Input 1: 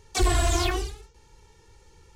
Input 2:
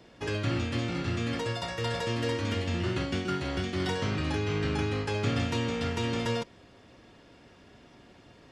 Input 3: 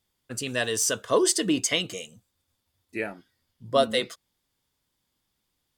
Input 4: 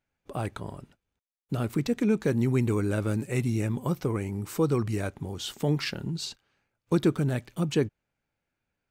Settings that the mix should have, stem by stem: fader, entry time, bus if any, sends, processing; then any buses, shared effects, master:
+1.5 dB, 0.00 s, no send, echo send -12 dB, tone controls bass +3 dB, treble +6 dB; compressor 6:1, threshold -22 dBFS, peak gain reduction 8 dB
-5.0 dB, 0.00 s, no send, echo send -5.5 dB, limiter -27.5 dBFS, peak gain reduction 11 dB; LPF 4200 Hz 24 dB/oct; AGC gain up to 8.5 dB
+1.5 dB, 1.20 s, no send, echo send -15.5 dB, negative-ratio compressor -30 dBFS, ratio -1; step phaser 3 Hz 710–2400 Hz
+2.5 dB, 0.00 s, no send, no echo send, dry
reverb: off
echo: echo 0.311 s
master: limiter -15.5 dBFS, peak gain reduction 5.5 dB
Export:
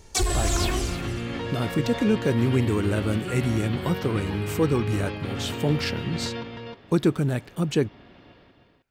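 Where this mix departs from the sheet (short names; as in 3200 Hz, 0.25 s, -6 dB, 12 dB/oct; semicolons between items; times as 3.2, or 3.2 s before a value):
stem 3: muted; master: missing limiter -15.5 dBFS, peak gain reduction 5.5 dB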